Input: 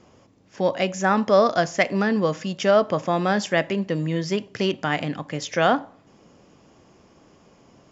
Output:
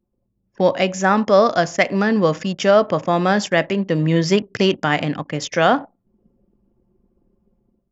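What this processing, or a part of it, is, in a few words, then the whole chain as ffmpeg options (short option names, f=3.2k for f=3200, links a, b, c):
voice memo with heavy noise removal: -af "anlmdn=0.631,dynaudnorm=f=120:g=5:m=11dB,volume=-1dB"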